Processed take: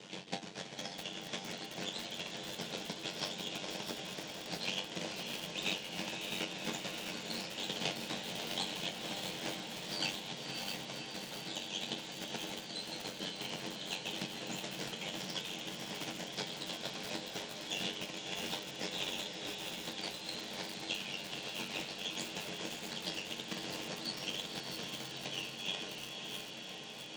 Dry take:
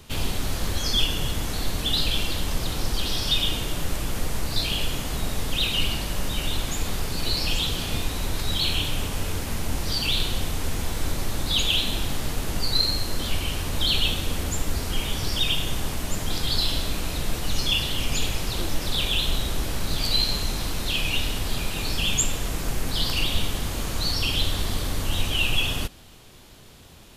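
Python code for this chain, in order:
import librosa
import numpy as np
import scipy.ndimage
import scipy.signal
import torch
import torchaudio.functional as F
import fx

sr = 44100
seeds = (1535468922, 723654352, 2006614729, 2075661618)

y = fx.tracing_dist(x, sr, depth_ms=0.19)
y = fx.low_shelf(y, sr, hz=330.0, db=7.5)
y = fx.over_compress(y, sr, threshold_db=-25.0, ratio=-1.0)
y = fx.tremolo_shape(y, sr, shape='triangle', hz=6.9, depth_pct=60)
y = fx.resonator_bank(y, sr, root=42, chord='sus4', decay_s=0.2)
y = y * np.sin(2.0 * np.pi * 47.0 * np.arange(len(y)) / sr)
y = fx.cabinet(y, sr, low_hz=220.0, low_slope=24, high_hz=6700.0, hz=(260.0, 360.0, 1200.0, 4300.0), db=(-10, -6, -9, -3))
y = fx.echo_diffused(y, sr, ms=552, feedback_pct=77, wet_db=-6)
y = fx.echo_crushed(y, sr, ms=657, feedback_pct=55, bits=8, wet_db=-4.5)
y = F.gain(torch.from_numpy(y), 7.5).numpy()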